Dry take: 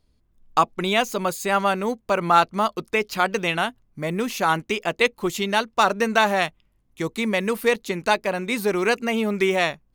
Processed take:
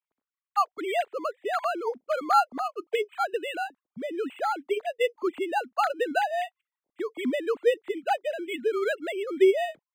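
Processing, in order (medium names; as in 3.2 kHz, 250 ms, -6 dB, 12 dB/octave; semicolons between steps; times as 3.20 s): formants replaced by sine waves; decimation joined by straight lines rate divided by 8×; trim -4.5 dB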